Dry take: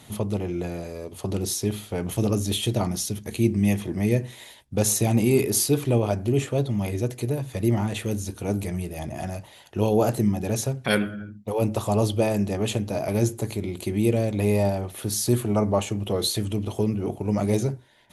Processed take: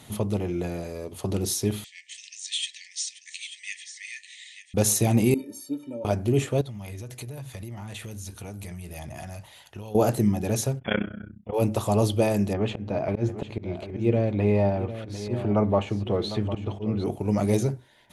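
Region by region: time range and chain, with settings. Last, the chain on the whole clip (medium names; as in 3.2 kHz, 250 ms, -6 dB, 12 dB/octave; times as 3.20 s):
1.84–4.74 s: brick-wall FIR band-pass 1.7–9.1 kHz + delay 890 ms -12 dB
5.34–6.05 s: high-pass 210 Hz + tilt shelf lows +8 dB, about 730 Hz + inharmonic resonator 270 Hz, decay 0.23 s, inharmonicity 0.03
6.61–9.95 s: peaking EQ 330 Hz -8.5 dB 1.9 oct + compression 12:1, threshold -33 dBFS
10.79–11.54 s: AM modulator 31 Hz, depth 90% + brick-wall FIR low-pass 3.5 kHz
12.53–17.04 s: slow attack 125 ms + low-pass 2.6 kHz + delay 752 ms -12.5 dB
whole clip: none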